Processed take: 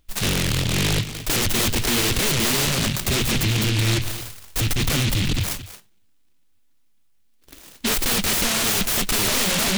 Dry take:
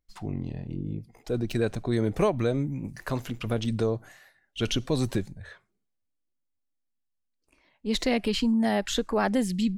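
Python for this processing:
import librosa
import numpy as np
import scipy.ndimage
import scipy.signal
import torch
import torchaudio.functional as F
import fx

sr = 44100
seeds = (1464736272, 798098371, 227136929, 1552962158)

y = fx.low_shelf_res(x, sr, hz=140.0, db=13.0, q=1.5, at=(3.07, 5.39))
y = fx.over_compress(y, sr, threshold_db=-26.0, ratio=-1.0)
y = fx.fold_sine(y, sr, drive_db=19, ceiling_db=-11.5)
y = y + 10.0 ** (-13.5 / 20.0) * np.pad(y, (int(224 * sr / 1000.0), 0))[:len(y)]
y = fx.noise_mod_delay(y, sr, seeds[0], noise_hz=2900.0, depth_ms=0.43)
y = y * librosa.db_to_amplitude(-6.0)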